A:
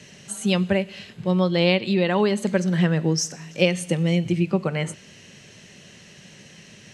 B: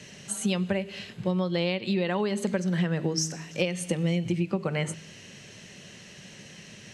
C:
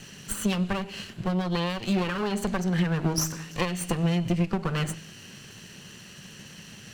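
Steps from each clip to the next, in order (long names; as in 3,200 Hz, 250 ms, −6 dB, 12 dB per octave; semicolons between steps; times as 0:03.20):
hum removal 79.67 Hz, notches 5; downward compressor 6 to 1, threshold −23 dBFS, peak gain reduction 10.5 dB
lower of the sound and its delayed copy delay 0.69 ms; level +2.5 dB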